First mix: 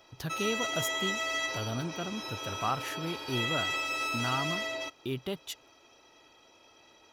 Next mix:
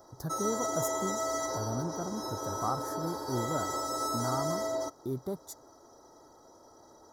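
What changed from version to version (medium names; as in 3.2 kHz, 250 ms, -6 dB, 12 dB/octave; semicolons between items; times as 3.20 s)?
background +6.5 dB; master: add Butterworth band-stop 2.7 kHz, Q 0.58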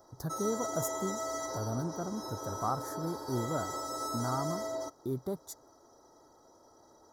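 background -4.0 dB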